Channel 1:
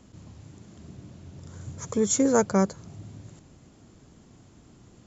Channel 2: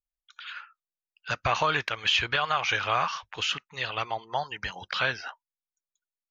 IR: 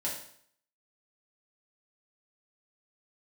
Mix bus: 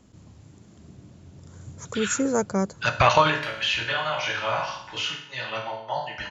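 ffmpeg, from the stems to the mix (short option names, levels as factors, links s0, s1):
-filter_complex "[0:a]volume=0.335,asplit=2[s0][s1];[1:a]agate=range=0.0224:threshold=0.00447:ratio=3:detection=peak,adelay=1550,volume=0.891,asplit=2[s2][s3];[s3]volume=0.335[s4];[s1]apad=whole_len=346471[s5];[s2][s5]sidechaingate=range=0.0224:threshold=0.00251:ratio=16:detection=peak[s6];[2:a]atrim=start_sample=2205[s7];[s4][s7]afir=irnorm=-1:irlink=0[s8];[s0][s6][s8]amix=inputs=3:normalize=0,acontrast=83"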